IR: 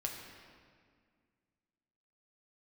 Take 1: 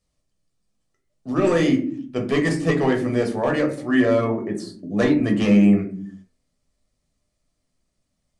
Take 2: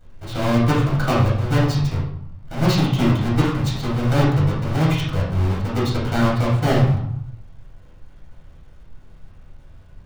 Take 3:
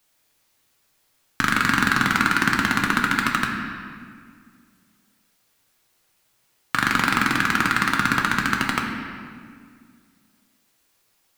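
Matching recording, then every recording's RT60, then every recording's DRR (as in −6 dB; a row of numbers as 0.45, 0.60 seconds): 3; non-exponential decay, 0.70 s, 2.0 s; 2.0, −7.0, 0.0 decibels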